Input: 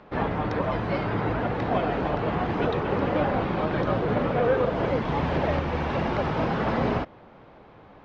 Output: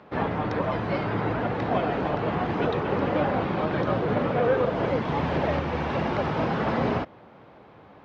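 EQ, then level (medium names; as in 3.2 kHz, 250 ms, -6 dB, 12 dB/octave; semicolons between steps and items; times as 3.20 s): high-pass 76 Hz; 0.0 dB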